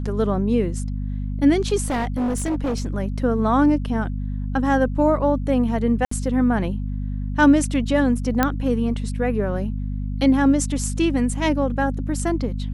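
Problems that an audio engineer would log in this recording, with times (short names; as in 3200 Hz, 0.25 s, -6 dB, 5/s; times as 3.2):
hum 50 Hz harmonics 5 -26 dBFS
1.85–2.86 clipped -19.5 dBFS
6.05–6.11 gap 64 ms
8.43 pop -4 dBFS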